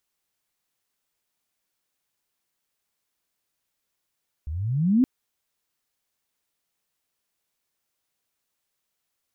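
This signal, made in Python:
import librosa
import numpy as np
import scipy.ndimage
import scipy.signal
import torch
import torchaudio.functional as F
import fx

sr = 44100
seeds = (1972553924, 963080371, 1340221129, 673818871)

y = fx.chirp(sr, length_s=0.57, from_hz=70.0, to_hz=270.0, law='logarithmic', from_db=-28.5, to_db=-14.0)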